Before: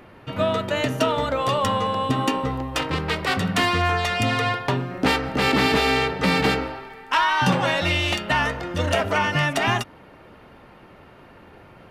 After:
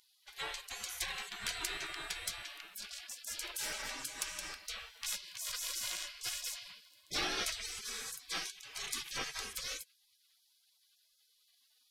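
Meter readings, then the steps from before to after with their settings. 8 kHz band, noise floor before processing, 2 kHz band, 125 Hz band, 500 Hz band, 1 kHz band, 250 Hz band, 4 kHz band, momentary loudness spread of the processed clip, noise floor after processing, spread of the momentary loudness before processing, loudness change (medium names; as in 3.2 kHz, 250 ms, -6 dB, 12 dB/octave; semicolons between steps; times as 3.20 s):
-1.5 dB, -48 dBFS, -19.0 dB, -35.5 dB, -29.0 dB, -26.0 dB, -31.0 dB, -12.5 dB, 8 LU, -73 dBFS, 7 LU, -17.5 dB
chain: dynamic bell 910 Hz, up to +6 dB, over -39 dBFS, Q 2.2; spectral gate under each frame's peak -30 dB weak; trim +1 dB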